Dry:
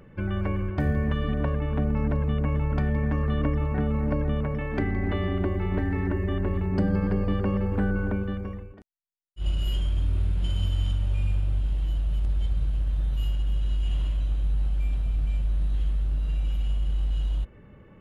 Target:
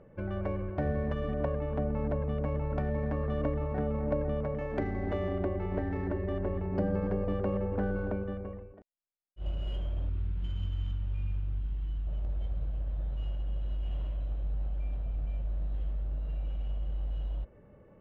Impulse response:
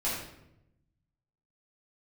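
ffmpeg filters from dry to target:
-af "highshelf=f=2.5k:g=7,adynamicsmooth=sensitivity=1:basefreq=1.9k,asetnsamples=n=441:p=0,asendcmd='10.09 equalizer g -5.5;12.07 equalizer g 9',equalizer=f=590:t=o:w=1:g=10.5,volume=-8dB"

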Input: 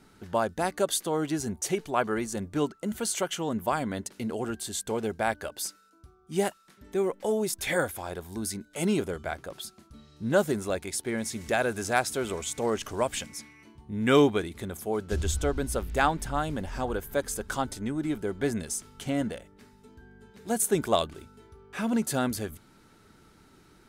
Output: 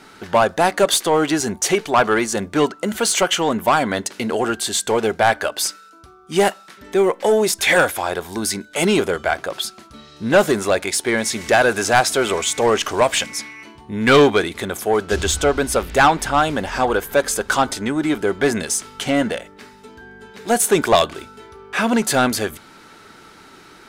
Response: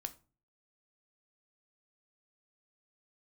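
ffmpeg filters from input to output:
-filter_complex "[0:a]asplit=2[a][b];[1:a]atrim=start_sample=2205,lowpass=7k[c];[b][c]afir=irnorm=-1:irlink=0,volume=-10dB[d];[a][d]amix=inputs=2:normalize=0,asplit=2[e][f];[f]highpass=f=720:p=1,volume=17dB,asoftclip=type=tanh:threshold=-8dB[g];[e][g]amix=inputs=2:normalize=0,lowpass=f=6.1k:p=1,volume=-6dB,volume=4.5dB"

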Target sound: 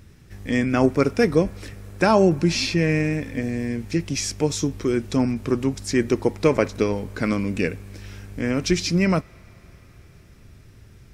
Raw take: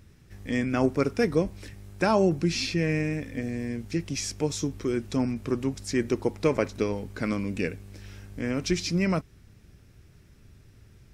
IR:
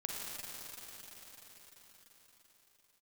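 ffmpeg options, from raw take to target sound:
-filter_complex "[0:a]asplit=2[a][b];[b]highpass=f=1.4k:p=1[c];[1:a]atrim=start_sample=2205,lowpass=2.2k[d];[c][d]afir=irnorm=-1:irlink=0,volume=-19.5dB[e];[a][e]amix=inputs=2:normalize=0,volume=5.5dB"

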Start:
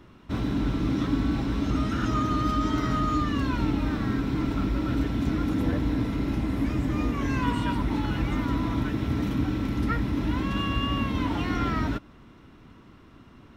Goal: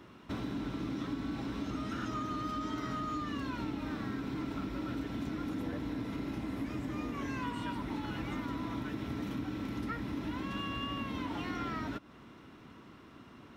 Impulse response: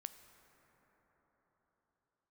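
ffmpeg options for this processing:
-af "highpass=f=190:p=1,acompressor=threshold=-37dB:ratio=3"

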